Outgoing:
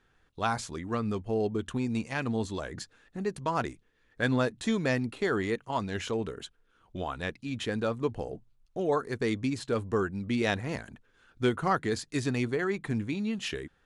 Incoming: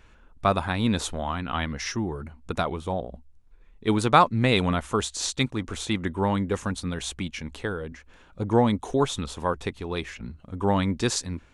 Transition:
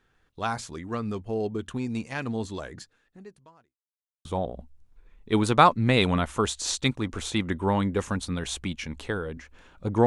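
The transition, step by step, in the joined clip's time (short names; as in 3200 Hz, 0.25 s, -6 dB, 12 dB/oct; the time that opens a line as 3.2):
outgoing
2.61–3.79 fade out quadratic
3.79–4.25 mute
4.25 switch to incoming from 2.8 s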